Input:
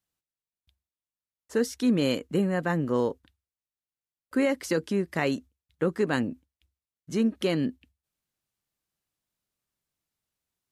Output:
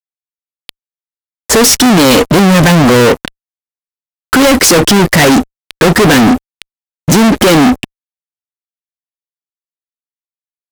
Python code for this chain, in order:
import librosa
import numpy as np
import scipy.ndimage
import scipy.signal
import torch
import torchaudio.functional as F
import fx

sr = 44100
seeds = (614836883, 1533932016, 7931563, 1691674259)

y = fx.fuzz(x, sr, gain_db=51.0, gate_db=-58.0)
y = F.gain(torch.from_numpy(y), 8.0).numpy()